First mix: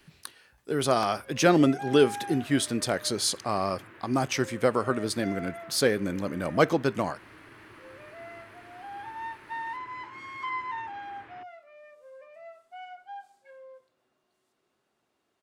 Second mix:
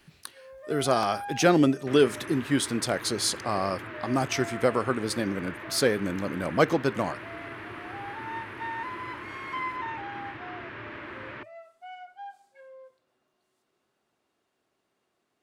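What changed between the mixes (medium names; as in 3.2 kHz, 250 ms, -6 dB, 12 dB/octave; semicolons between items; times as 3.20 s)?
first sound: entry -0.90 s; second sound +10.5 dB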